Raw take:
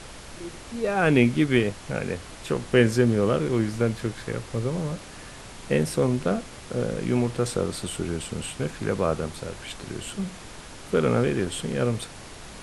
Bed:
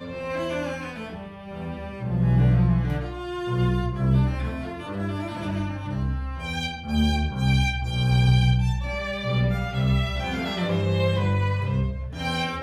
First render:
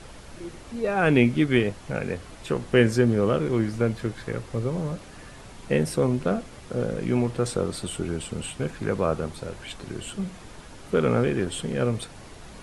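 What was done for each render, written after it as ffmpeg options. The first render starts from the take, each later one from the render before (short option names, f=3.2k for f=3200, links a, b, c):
-af "afftdn=nr=6:nf=-43"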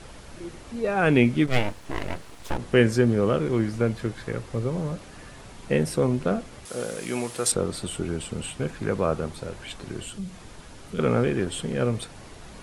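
-filter_complex "[0:a]asplit=3[a][b][c];[a]afade=t=out:st=1.46:d=0.02[d];[b]aeval=exprs='abs(val(0))':c=same,afade=t=in:st=1.46:d=0.02,afade=t=out:st=2.57:d=0.02[e];[c]afade=t=in:st=2.57:d=0.02[f];[d][e][f]amix=inputs=3:normalize=0,asettb=1/sr,asplit=3[g][h][i];[g]atrim=end=6.654[j];[h]atrim=start=6.65:end=7.52,asetpts=PTS-STARTPTS,afade=t=in:d=0.004:c=qsin,afade=t=out:st=0.866:d=0.004:c=qsin,aemphasis=mode=production:type=riaa[k];[i]atrim=start=7.516[l];[j][k]acrossfade=d=0.004:c1=hsin:c2=qsin[m];[m][l]acrossfade=d=0.004:c1=qsin:c2=hsin,asettb=1/sr,asplit=3[n][o][p];[n]atrim=end=10.044[q];[o]atrim=start=10.04:end=10.99,asetpts=PTS-STARTPTS,afade=t=in:d=0.004:c=qsin,afade=t=out:st=0.946:d=0.004:c=qsin,acrossover=split=190|3000[r][s][t];[s]acompressor=threshold=-45dB:ratio=3:attack=3.2:release=140:knee=2.83:detection=peak[u];[r][u][t]amix=inputs=3:normalize=0[v];[p]atrim=start=10.986[w];[q][v]acrossfade=d=0.004:c1=hsin:c2=qsin[x];[x][w]acrossfade=d=0.004:c1=qsin:c2=hsin"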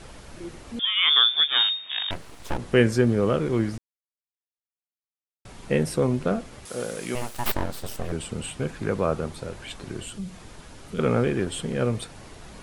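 -filter_complex "[0:a]asettb=1/sr,asplit=3[a][b][c];[a]atrim=end=0.794[d];[b]atrim=start=0.79:end=2.11,asetpts=PTS-STARTPTS,afade=t=in:d=0.004:c=qsin,afade=t=out:st=1.316:d=0.004:c=qsin,lowpass=f=3.1k:t=q:w=0.5098,lowpass=f=3.1k:t=q:w=0.6013,lowpass=f=3.1k:t=q:w=0.9,lowpass=f=3.1k:t=q:w=2.563,afreqshift=-3700[e];[c]atrim=start=2.106[f];[d][e]acrossfade=d=0.004:c1=hsin:c2=qsin[g];[g][f]acrossfade=d=0.004:c1=qsin:c2=hsin,asettb=1/sr,asplit=3[h][i][j];[h]atrim=end=7.154[k];[i]atrim=start=7.15:end=8.12,asetpts=PTS-STARTPTS,afade=t=in:d=0.004:c=qsin,afade=t=out:st=0.966:d=0.004:c=qsin,aeval=exprs='abs(val(0))':c=same[l];[j]atrim=start=8.116[m];[k][l]acrossfade=d=0.004:c1=hsin:c2=qsin[n];[n][m]acrossfade=d=0.004:c1=qsin:c2=hsin,asplit=3[o][p][q];[o]atrim=end=3.78,asetpts=PTS-STARTPTS,afade=t=out:st=3.776:d=0.004:c=hsin[r];[p]atrim=start=3.78:end=5.45,asetpts=PTS-STARTPTS,volume=0[s];[q]atrim=start=5.45,asetpts=PTS-STARTPTS,afade=t=in:d=0.004:c=hsin[t];[r][s][t]concat=n=3:v=0:a=1"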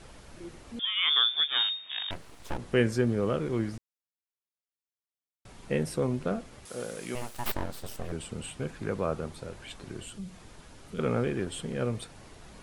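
-af "volume=-6dB"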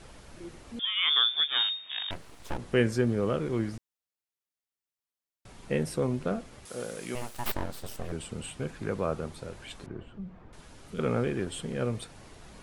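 -filter_complex "[0:a]asettb=1/sr,asplit=3[a][b][c];[a]atrim=end=9.864[d];[b]atrim=start=9.86:end=10.53,asetpts=PTS-STARTPTS,afade=t=in:d=0.004:c=qsin,afade=t=out:st=0.666:d=0.004:c=qsin,lowpass=1.4k[e];[c]atrim=start=10.526[f];[d][e]acrossfade=d=0.004:c1=hsin:c2=qsin[g];[g][f]acrossfade=d=0.004:c1=qsin:c2=hsin"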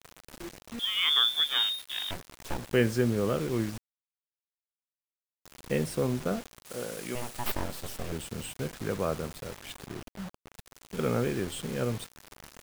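-af "acrusher=bits=6:mix=0:aa=0.000001"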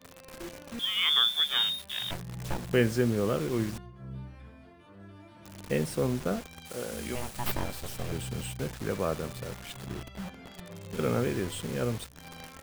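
-filter_complex "[1:a]volume=-21dB[a];[0:a][a]amix=inputs=2:normalize=0"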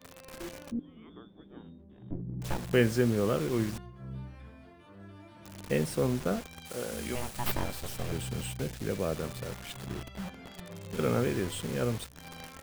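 -filter_complex "[0:a]asplit=3[a][b][c];[a]afade=t=out:st=0.7:d=0.02[d];[b]lowpass=f=300:t=q:w=2.9,afade=t=in:st=0.7:d=0.02,afade=t=out:st=2.41:d=0.02[e];[c]afade=t=in:st=2.41:d=0.02[f];[d][e][f]amix=inputs=3:normalize=0,asettb=1/sr,asplit=3[g][h][i];[g]atrim=end=8.624[j];[h]atrim=start=8.62:end=9.17,asetpts=PTS-STARTPTS,afade=t=in:d=0.004:c=qsin,afade=t=out:st=0.546:d=0.004:c=qsin,equalizer=f=1.1k:t=o:w=1.1:g=-7.5[k];[i]atrim=start=9.166[l];[j][k]acrossfade=d=0.004:c1=hsin:c2=qsin[m];[m][l]acrossfade=d=0.004:c1=qsin:c2=hsin"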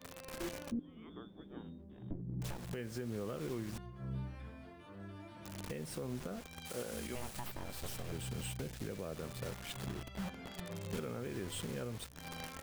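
-af "acompressor=threshold=-29dB:ratio=6,alimiter=level_in=6.5dB:limit=-24dB:level=0:latency=1:release=439,volume=-6.5dB"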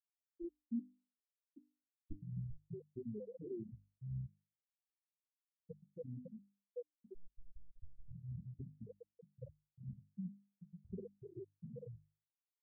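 -af "afftfilt=real='re*gte(hypot(re,im),0.0708)':imag='im*gte(hypot(re,im),0.0708)':win_size=1024:overlap=0.75,bandreject=f=50:t=h:w=6,bandreject=f=100:t=h:w=6,bandreject=f=150:t=h:w=6,bandreject=f=200:t=h:w=6,bandreject=f=250:t=h:w=6,bandreject=f=300:t=h:w=6"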